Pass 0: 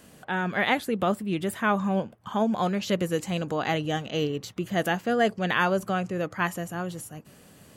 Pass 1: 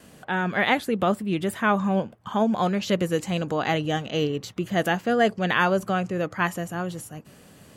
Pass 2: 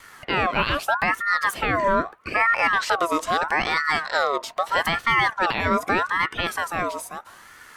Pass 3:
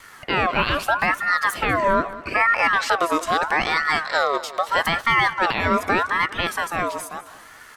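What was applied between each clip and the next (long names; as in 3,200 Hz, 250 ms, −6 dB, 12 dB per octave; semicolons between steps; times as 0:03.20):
noise gate with hold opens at −50 dBFS; high-shelf EQ 9,600 Hz −4.5 dB; level +2.5 dB
brickwall limiter −16.5 dBFS, peak gain reduction 9 dB; ring modulator whose carrier an LFO sweeps 1,200 Hz, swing 35%, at 0.79 Hz; level +6.5 dB
repeating echo 198 ms, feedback 43%, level −16.5 dB; level +1.5 dB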